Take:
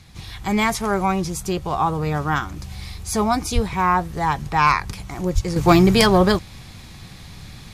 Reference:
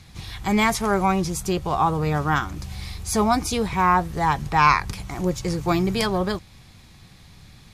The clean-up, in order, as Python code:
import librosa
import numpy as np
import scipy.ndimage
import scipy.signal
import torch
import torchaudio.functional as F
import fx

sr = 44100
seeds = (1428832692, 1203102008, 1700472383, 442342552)

y = fx.fix_declip(x, sr, threshold_db=-5.5)
y = fx.fix_deplosive(y, sr, at_s=(3.54, 5.34))
y = fx.fix_level(y, sr, at_s=5.56, step_db=-8.5)